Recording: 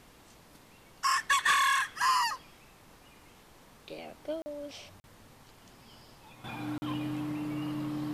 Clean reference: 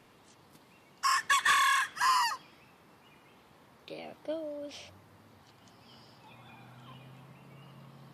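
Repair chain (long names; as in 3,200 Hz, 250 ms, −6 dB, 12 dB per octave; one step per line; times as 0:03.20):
notch filter 300 Hz, Q 30
repair the gap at 0:04.42/0:05.00/0:06.78, 40 ms
downward expander −49 dBFS, range −21 dB
level 0 dB, from 0:06.44 −12 dB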